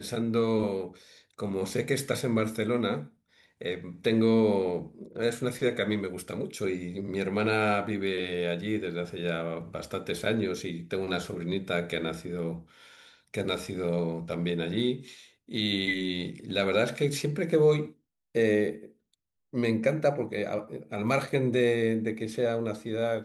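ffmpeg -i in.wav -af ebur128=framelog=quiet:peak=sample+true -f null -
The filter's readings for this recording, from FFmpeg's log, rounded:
Integrated loudness:
  I:         -29.3 LUFS
  Threshold: -39.7 LUFS
Loudness range:
  LRA:         4.6 LU
  Threshold: -49.8 LUFS
  LRA low:   -32.6 LUFS
  LRA high:  -28.0 LUFS
Sample peak:
  Peak:      -11.6 dBFS
True peak:
  Peak:      -11.6 dBFS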